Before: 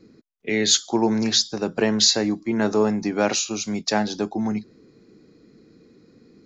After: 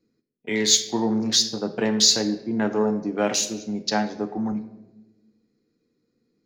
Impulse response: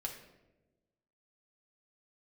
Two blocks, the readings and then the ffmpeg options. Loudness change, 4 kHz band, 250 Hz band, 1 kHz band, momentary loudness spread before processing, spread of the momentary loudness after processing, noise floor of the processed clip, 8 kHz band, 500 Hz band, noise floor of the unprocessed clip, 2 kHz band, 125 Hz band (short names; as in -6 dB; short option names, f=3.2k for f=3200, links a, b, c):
-0.5 dB, 0.0 dB, -2.0 dB, -2.0 dB, 9 LU, 11 LU, -73 dBFS, n/a, -2.5 dB, -55 dBFS, -2.5 dB, -2.5 dB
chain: -filter_complex "[0:a]afwtdn=0.0224,asplit=2[a][b];[1:a]atrim=start_sample=2205,highshelf=f=3.4k:g=10[c];[b][c]afir=irnorm=-1:irlink=0,volume=1dB[d];[a][d]amix=inputs=2:normalize=0,volume=-8.5dB"